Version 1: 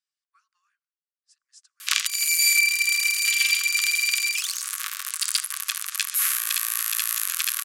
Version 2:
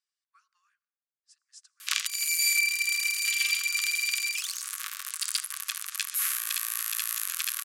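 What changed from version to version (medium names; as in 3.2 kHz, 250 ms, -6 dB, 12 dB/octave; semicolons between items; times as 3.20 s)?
speech: send +9.5 dB; background -5.5 dB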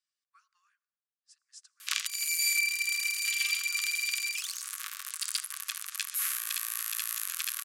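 background -3.0 dB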